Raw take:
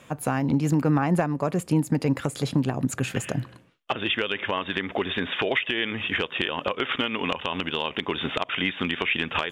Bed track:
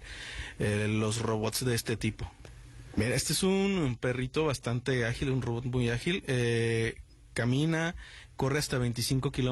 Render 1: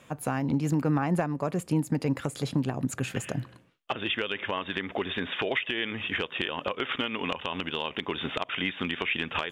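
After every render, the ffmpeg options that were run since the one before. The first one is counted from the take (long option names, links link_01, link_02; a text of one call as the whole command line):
ffmpeg -i in.wav -af "volume=-4dB" out.wav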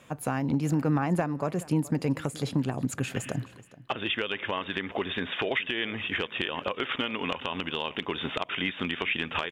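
ffmpeg -i in.wav -af "aecho=1:1:424:0.106" out.wav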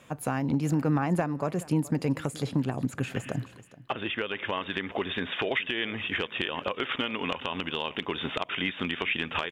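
ffmpeg -i in.wav -filter_complex "[0:a]asettb=1/sr,asplit=3[link_01][link_02][link_03];[link_01]atrim=end=2.454[link_04];[link_02]atrim=start=2.45:end=4.35,asetpts=PTS-STARTPTS,afade=type=in:duration=0.004:curve=qsin,afade=type=out:start_time=1.896:duration=0.004:curve=qsin,acrossover=split=2900[link_05][link_06];[link_06]acompressor=threshold=-44dB:ratio=4:attack=1:release=60[link_07];[link_05][link_07]amix=inputs=2:normalize=0[link_08];[link_03]atrim=start=4.346[link_09];[link_04][link_08]acrossfade=duration=0.004:curve1=hsin:curve2=qsin[link_10];[link_10][link_09]acrossfade=duration=0.004:curve1=qsin:curve2=hsin" out.wav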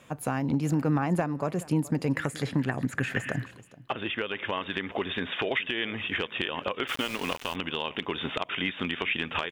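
ffmpeg -i in.wav -filter_complex "[0:a]asettb=1/sr,asplit=3[link_01][link_02][link_03];[link_01]atrim=end=2.134[link_04];[link_02]atrim=start=2.13:end=3.51,asetpts=PTS-STARTPTS,afade=type=in:duration=0.004:curve=qsin,afade=type=out:start_time=1.376:duration=0.004:curve=qsin,equalizer=frequency=1800:width_type=o:width=0.64:gain=12.5[link_05];[link_03]atrim=start=3.506[link_06];[link_04][link_05]acrossfade=duration=0.004:curve1=hsin:curve2=qsin[link_07];[link_07][link_06]acrossfade=duration=0.004:curve1=qsin:curve2=hsin,asplit=3[link_08][link_09][link_10];[link_08]afade=type=out:start_time=6.87:duration=0.02[link_11];[link_09]aeval=exprs='val(0)*gte(abs(val(0)),0.0178)':channel_layout=same,afade=type=in:start_time=6.87:duration=0.02,afade=type=out:start_time=7.54:duration=0.02[link_12];[link_10]afade=type=in:start_time=7.54:duration=0.02[link_13];[link_11][link_12][link_13]amix=inputs=3:normalize=0" out.wav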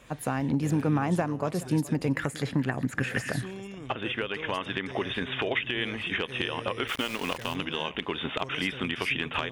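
ffmpeg -i in.wav -i bed.wav -filter_complex "[1:a]volume=-13dB[link_01];[0:a][link_01]amix=inputs=2:normalize=0" out.wav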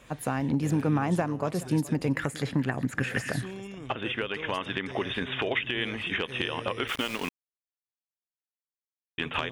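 ffmpeg -i in.wav -filter_complex "[0:a]asplit=3[link_01][link_02][link_03];[link_01]atrim=end=7.29,asetpts=PTS-STARTPTS,afade=type=out:start_time=7.286:duration=0.004:curve=hsin[link_04];[link_02]atrim=start=7.29:end=9.18,asetpts=PTS-STARTPTS,volume=0[link_05];[link_03]atrim=start=9.18,asetpts=PTS-STARTPTS,afade=type=in:duration=0.004:curve=hsin[link_06];[link_04][link_05][link_06]concat=n=3:v=0:a=1" out.wav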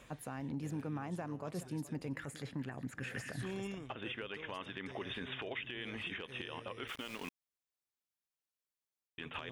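ffmpeg -i in.wav -af "areverse,acompressor=threshold=-35dB:ratio=12,areverse,alimiter=level_in=7dB:limit=-24dB:level=0:latency=1:release=144,volume=-7dB" out.wav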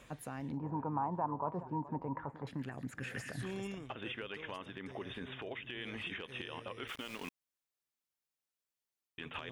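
ffmpeg -i in.wav -filter_complex "[0:a]asettb=1/sr,asplit=3[link_01][link_02][link_03];[link_01]atrim=end=0.574[link_04];[link_02]atrim=start=0.57:end=2.47,asetpts=PTS-STARTPTS,afade=type=in:duration=0.004:curve=qsin,afade=type=out:start_time=1.896:duration=0.004:curve=qsin,lowpass=frequency=950:width_type=q:width=11[link_05];[link_03]atrim=start=2.466[link_06];[link_04][link_05]acrossfade=duration=0.004:curve1=hsin:curve2=qsin[link_07];[link_07][link_06]acrossfade=duration=0.004:curve1=qsin:curve2=hsin,asettb=1/sr,asplit=3[link_08][link_09][link_10];[link_08]atrim=end=4.564[link_11];[link_09]atrim=start=4.56:end=5.68,asetpts=PTS-STARTPTS,afade=type=in:duration=0.004:curve=qsin,afade=type=out:start_time=1.116:duration=0.004:curve=qsin,equalizer=frequency=3100:width_type=o:width=2.7:gain=-5[link_12];[link_10]atrim=start=5.676[link_13];[link_11][link_12]acrossfade=duration=0.004:curve1=hsin:curve2=qsin[link_14];[link_14][link_13]acrossfade=duration=0.004:curve1=qsin:curve2=hsin" out.wav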